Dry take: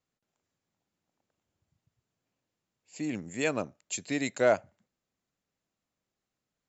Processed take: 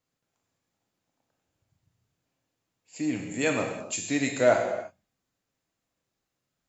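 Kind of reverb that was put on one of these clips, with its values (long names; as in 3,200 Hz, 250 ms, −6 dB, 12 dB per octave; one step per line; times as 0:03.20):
reverb whose tail is shaped and stops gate 360 ms falling, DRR 1 dB
level +1.5 dB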